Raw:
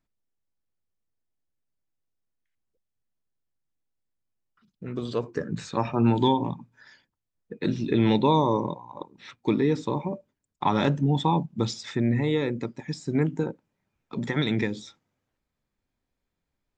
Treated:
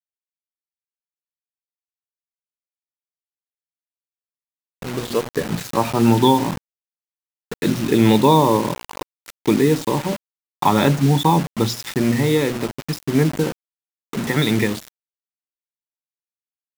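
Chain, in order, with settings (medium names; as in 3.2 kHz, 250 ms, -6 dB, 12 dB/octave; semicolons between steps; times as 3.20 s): hum notches 60/120/180/240/300/360 Hz; word length cut 6-bit, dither none; trim +7.5 dB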